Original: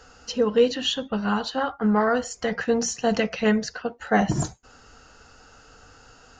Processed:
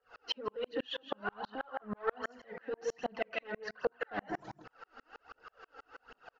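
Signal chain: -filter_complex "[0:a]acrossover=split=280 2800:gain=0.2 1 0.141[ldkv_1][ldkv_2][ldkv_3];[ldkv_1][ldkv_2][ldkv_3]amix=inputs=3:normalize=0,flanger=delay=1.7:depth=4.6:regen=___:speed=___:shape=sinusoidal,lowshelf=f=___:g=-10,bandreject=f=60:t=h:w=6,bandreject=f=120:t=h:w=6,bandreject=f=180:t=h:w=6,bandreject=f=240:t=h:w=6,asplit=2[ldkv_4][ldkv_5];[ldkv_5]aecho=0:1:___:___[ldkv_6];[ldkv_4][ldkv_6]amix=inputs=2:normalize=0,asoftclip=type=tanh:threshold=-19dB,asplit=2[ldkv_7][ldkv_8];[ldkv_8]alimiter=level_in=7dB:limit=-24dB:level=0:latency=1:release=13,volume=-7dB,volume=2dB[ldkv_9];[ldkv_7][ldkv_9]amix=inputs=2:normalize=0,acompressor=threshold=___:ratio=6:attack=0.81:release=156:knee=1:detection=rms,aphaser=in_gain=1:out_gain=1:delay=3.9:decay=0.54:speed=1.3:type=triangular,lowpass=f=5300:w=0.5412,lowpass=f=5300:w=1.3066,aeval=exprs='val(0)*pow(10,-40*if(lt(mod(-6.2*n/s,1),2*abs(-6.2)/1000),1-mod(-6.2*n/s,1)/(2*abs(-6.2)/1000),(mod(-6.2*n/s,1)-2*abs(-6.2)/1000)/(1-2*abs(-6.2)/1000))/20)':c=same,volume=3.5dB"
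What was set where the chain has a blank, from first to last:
-35, 0.54, 110, 163, 0.188, -29dB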